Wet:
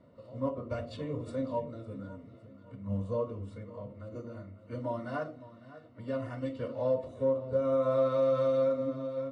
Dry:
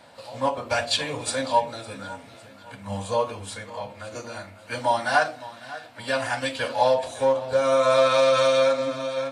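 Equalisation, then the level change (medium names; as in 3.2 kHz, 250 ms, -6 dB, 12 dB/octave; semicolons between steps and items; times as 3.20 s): boxcar filter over 54 samples; 0.0 dB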